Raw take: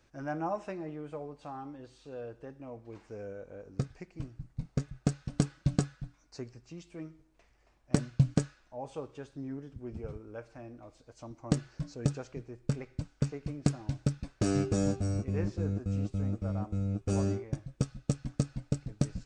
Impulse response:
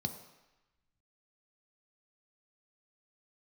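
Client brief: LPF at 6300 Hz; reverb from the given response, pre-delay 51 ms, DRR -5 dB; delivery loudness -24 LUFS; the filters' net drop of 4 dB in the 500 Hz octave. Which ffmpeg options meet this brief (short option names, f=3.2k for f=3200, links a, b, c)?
-filter_complex "[0:a]lowpass=6.3k,equalizer=f=500:t=o:g=-5,asplit=2[a][b];[1:a]atrim=start_sample=2205,adelay=51[c];[b][c]afir=irnorm=-1:irlink=0,volume=4dB[d];[a][d]amix=inputs=2:normalize=0,volume=-4dB"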